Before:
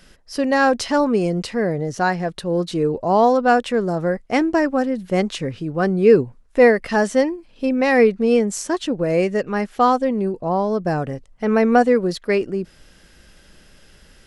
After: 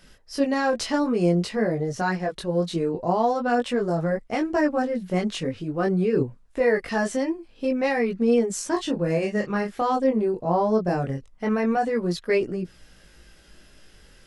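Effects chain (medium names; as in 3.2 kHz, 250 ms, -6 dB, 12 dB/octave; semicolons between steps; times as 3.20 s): 8.71–9.79 s: doubling 29 ms -6 dB; peak limiter -11.5 dBFS, peak gain reduction 9 dB; chorus voices 2, 0.24 Hz, delay 20 ms, depth 3.2 ms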